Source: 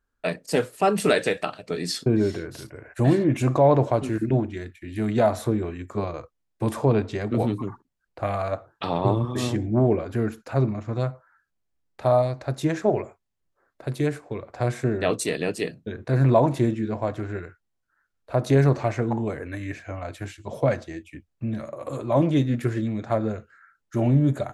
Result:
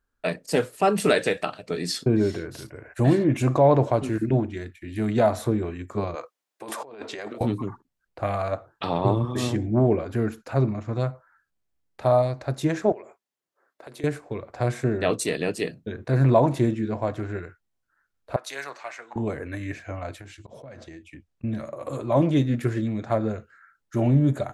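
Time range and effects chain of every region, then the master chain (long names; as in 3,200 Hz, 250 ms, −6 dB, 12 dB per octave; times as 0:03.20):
0:06.15–0:07.41: high-pass filter 490 Hz + compressor whose output falls as the input rises −37 dBFS
0:12.92–0:14.04: high-pass filter 310 Hz + downward compressor 3 to 1, threshold −40 dBFS
0:18.36–0:19.16: high-pass filter 1,300 Hz + multiband upward and downward expander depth 70%
0:20.20–0:21.44: low-pass filter 8,900 Hz + volume swells 203 ms + downward compressor 12 to 1, threshold −38 dBFS
whole clip: no processing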